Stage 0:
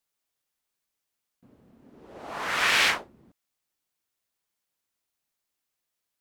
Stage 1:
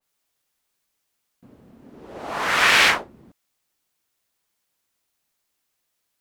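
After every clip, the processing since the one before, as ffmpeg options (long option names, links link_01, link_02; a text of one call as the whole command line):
ffmpeg -i in.wav -af "adynamicequalizer=threshold=0.0224:dfrequency=2300:dqfactor=0.7:tfrequency=2300:tqfactor=0.7:attack=5:release=100:ratio=0.375:range=2.5:mode=cutabove:tftype=highshelf,volume=7.5dB" out.wav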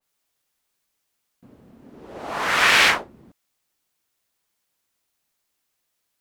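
ffmpeg -i in.wav -af anull out.wav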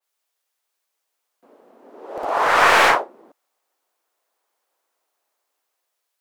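ffmpeg -i in.wav -filter_complex "[0:a]acrossover=split=390|1200[link_01][link_02][link_03];[link_01]acrusher=bits=3:dc=4:mix=0:aa=0.000001[link_04];[link_02]dynaudnorm=framelen=590:gausssize=5:maxgain=13dB[link_05];[link_03]aeval=exprs='(tanh(7.94*val(0)+0.5)-tanh(0.5))/7.94':channel_layout=same[link_06];[link_04][link_05][link_06]amix=inputs=3:normalize=0" out.wav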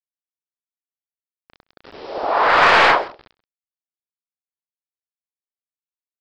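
ffmpeg -i in.wav -af "aresample=11025,acrusher=bits=6:mix=0:aa=0.000001,aresample=44100,asoftclip=type=tanh:threshold=-8.5dB,aecho=1:1:131:0.0891,volume=3.5dB" out.wav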